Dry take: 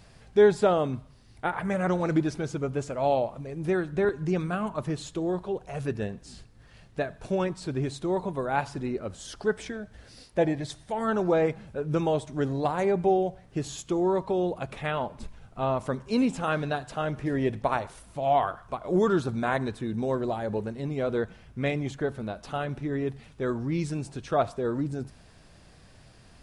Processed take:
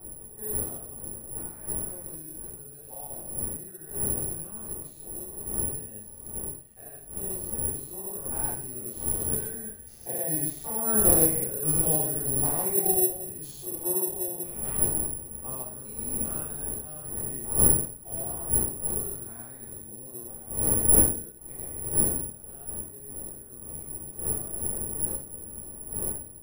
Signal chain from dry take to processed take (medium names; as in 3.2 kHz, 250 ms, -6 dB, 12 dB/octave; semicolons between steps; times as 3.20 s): spectrogram pixelated in time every 200 ms; Doppler pass-by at 11.34 s, 7 m/s, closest 8.3 m; wind noise 380 Hz -39 dBFS; reverberation RT60 0.40 s, pre-delay 3 ms, DRR -8.5 dB; careless resampling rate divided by 4×, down none, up zero stuff; trim -13.5 dB